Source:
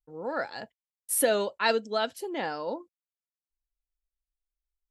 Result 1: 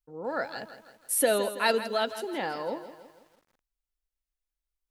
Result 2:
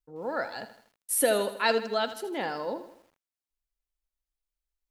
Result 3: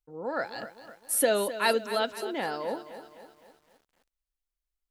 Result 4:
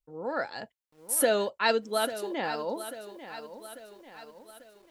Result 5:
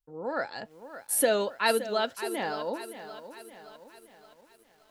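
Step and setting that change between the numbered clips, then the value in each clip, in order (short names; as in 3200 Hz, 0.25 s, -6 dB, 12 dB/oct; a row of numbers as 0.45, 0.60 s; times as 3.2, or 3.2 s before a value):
lo-fi delay, time: 164, 80, 257, 843, 570 ms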